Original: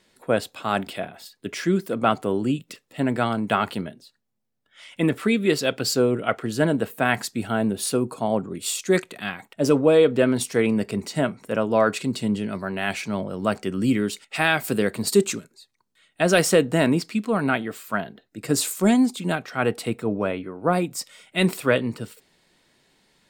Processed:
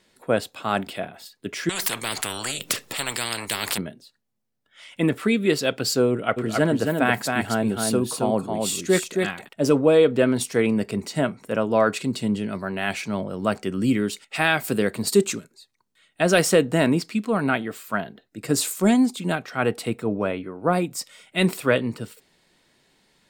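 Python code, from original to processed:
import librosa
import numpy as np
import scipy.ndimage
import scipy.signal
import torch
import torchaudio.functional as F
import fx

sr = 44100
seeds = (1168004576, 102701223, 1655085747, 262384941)

y = fx.spectral_comp(x, sr, ratio=10.0, at=(1.69, 3.78))
y = fx.echo_single(y, sr, ms=270, db=-4.0, at=(6.36, 9.47), fade=0.02)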